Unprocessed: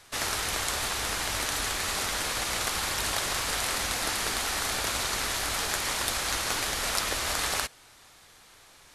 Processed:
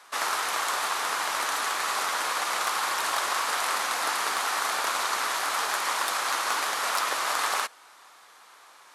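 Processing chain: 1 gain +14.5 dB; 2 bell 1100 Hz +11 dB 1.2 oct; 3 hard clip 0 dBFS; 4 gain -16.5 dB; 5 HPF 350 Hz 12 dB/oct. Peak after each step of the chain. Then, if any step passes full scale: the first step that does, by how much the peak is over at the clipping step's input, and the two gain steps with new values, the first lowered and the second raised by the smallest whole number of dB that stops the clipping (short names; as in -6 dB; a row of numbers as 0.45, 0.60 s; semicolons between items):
+6.5, +9.0, 0.0, -16.5, -13.0 dBFS; step 1, 9.0 dB; step 1 +5.5 dB, step 4 -7.5 dB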